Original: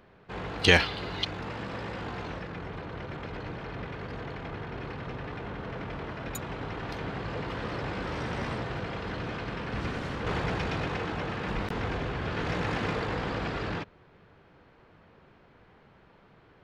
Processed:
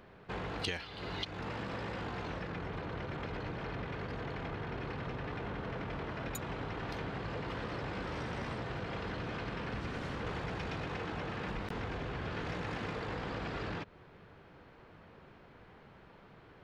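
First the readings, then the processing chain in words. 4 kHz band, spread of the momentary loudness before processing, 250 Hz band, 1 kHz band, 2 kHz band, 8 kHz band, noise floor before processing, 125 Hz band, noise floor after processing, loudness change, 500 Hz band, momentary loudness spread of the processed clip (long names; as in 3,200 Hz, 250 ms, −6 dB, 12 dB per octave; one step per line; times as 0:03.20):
−10.0 dB, 8 LU, −6.0 dB, −5.5 dB, −9.0 dB, −7.5 dB, −59 dBFS, −6.0 dB, −58 dBFS, −7.0 dB, −6.5 dB, 18 LU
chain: downward compressor, threshold −37 dBFS, peak gain reduction 21.5 dB
level +1 dB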